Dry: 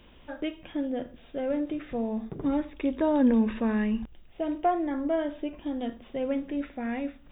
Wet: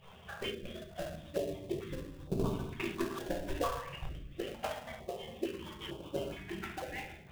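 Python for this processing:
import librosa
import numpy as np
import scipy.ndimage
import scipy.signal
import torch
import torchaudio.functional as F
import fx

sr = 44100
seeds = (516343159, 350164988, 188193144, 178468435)

p1 = fx.hpss_only(x, sr, part='percussive')
p2 = fx.peak_eq(p1, sr, hz=1100.0, db=5.5, octaves=0.41)
p3 = fx.room_shoebox(p2, sr, seeds[0], volume_m3=180.0, walls='mixed', distance_m=1.1)
p4 = fx.spec_box(p3, sr, start_s=0.54, length_s=1.89, low_hz=730.0, high_hz=3200.0, gain_db=-8)
p5 = fx.high_shelf_res(p4, sr, hz=1600.0, db=-7.5, q=1.5, at=(2.95, 3.93))
p6 = fx.sample_hold(p5, sr, seeds[1], rate_hz=2200.0, jitter_pct=20)
p7 = p5 + (p6 * 10.0 ** (-5.5 / 20.0))
p8 = fx.hum_notches(p7, sr, base_hz=60, count=3)
p9 = fx.filter_held_notch(p8, sr, hz=2.2, low_hz=310.0, high_hz=1900.0)
y = p9 * 10.0 ** (1.5 / 20.0)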